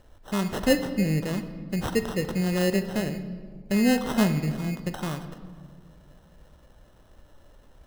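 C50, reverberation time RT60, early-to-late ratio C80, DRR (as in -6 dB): 10.5 dB, 1.8 s, 12.0 dB, 9.0 dB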